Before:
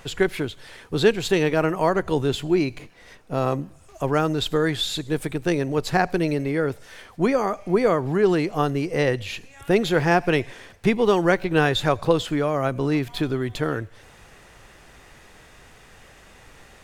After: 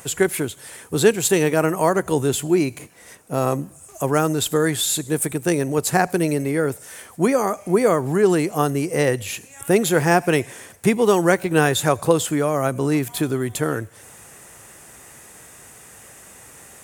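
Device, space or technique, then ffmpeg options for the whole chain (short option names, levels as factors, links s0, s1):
budget condenser microphone: -af "highpass=89,highshelf=f=6100:t=q:w=1.5:g=13,volume=1.33"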